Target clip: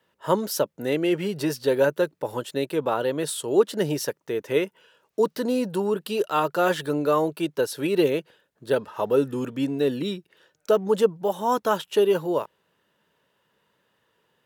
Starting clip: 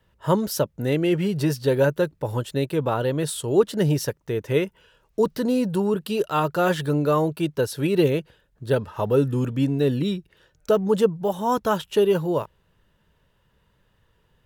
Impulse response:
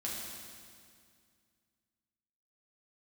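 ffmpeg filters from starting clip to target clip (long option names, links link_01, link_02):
-af "highpass=260"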